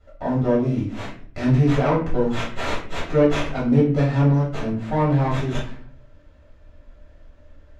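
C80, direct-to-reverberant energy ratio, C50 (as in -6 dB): 10.5 dB, -8.5 dB, 5.5 dB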